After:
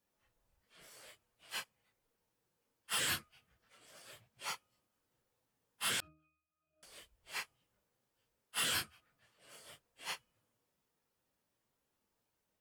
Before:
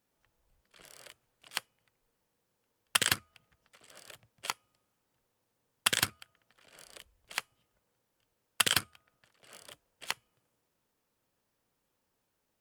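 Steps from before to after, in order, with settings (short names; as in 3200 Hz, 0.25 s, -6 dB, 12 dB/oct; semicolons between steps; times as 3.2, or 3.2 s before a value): phase scrambler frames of 0.1 s; soft clip -24 dBFS, distortion -15 dB; 6–6.83 octave resonator D#, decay 0.54 s; gain -4 dB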